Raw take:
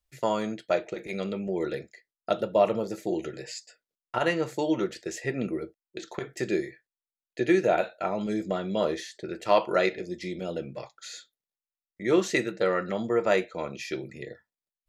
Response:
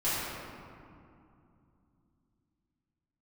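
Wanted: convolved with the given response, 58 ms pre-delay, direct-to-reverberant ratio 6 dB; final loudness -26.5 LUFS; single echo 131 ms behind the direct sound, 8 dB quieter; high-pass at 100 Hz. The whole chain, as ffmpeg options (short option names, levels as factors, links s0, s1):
-filter_complex "[0:a]highpass=100,aecho=1:1:131:0.398,asplit=2[s0][s1];[1:a]atrim=start_sample=2205,adelay=58[s2];[s1][s2]afir=irnorm=-1:irlink=0,volume=0.15[s3];[s0][s3]amix=inputs=2:normalize=0,volume=1.06"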